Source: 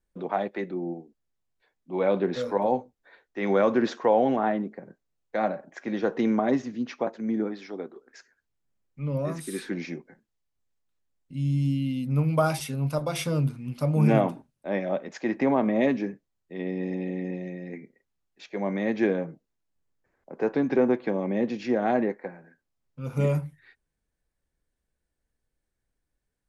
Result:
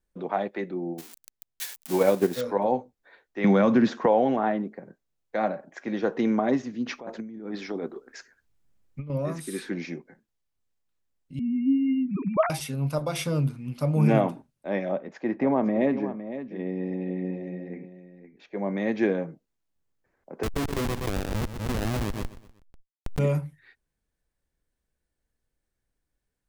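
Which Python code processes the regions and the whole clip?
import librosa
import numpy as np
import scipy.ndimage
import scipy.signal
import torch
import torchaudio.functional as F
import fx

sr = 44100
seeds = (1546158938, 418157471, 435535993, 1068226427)

y = fx.chain(x, sr, fx.crossing_spikes(level_db=-27.5),
    fx.transient(attack_db=8, sustain_db=-5), at=(0.98, 2.41))
y = fx.chain(y, sr, fx.highpass(hz=57.0, slope=12),
    fx.low_shelf_res(hz=280.0, db=6.5, q=1.5),
    fx.band_squash(depth_pct=100), at=(3.44, 4.06))
y = fx.chain(y, sr, fx.low_shelf(hz=150.0, db=6.0),
    fx.over_compress(threshold_db=-35.0, ratio=-1.0), at=(6.86, 9.1))
y = fx.chain(y, sr, fx.sine_speech(),
    fx.lowpass(hz=2900.0, slope=12),
    fx.peak_eq(hz=1600.0, db=-5.5, octaves=0.3), at=(11.39, 12.5))
y = fx.chain(y, sr, fx.lowpass(hz=1400.0, slope=6),
    fx.echo_single(ms=510, db=-11.5), at=(14.92, 18.77))
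y = fx.chain(y, sr, fx.schmitt(flips_db=-22.0),
    fx.echo_feedback(ms=123, feedback_pct=42, wet_db=-14.5),
    fx.pre_swell(db_per_s=66.0), at=(20.43, 23.19))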